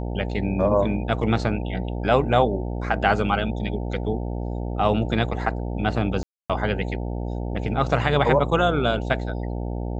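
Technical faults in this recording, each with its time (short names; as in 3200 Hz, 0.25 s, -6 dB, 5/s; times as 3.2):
buzz 60 Hz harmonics 15 -28 dBFS
6.23–6.5 gap 0.266 s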